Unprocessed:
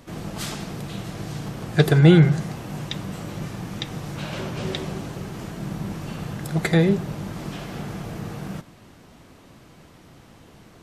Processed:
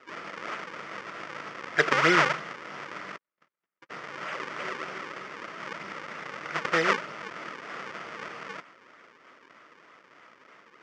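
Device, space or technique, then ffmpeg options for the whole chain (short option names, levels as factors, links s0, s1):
circuit-bent sampling toy: -filter_complex "[0:a]asplit=3[s0][s1][s2];[s0]afade=t=out:st=3.16:d=0.02[s3];[s1]agate=range=0.002:threshold=0.0562:ratio=16:detection=peak,afade=t=in:st=3.16:d=0.02,afade=t=out:st=3.89:d=0.02[s4];[s2]afade=t=in:st=3.89:d=0.02[s5];[s3][s4][s5]amix=inputs=3:normalize=0,acrusher=samples=38:mix=1:aa=0.000001:lfo=1:lforange=60.8:lforate=3.2,highpass=590,equalizer=f=790:t=q:w=4:g=-7,equalizer=f=1300:t=q:w=4:g=8,equalizer=f=2000:t=q:w=4:g=7,equalizer=f=4000:t=q:w=4:g=-9,lowpass=f=5300:w=0.5412,lowpass=f=5300:w=1.3066"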